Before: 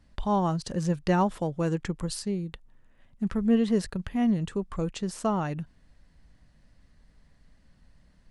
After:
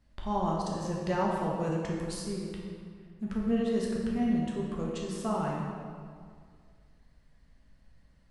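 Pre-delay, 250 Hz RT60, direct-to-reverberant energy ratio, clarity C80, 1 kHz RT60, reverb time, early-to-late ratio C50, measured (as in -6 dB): 8 ms, 2.1 s, -3.0 dB, 2.0 dB, 2.0 s, 2.0 s, 0.0 dB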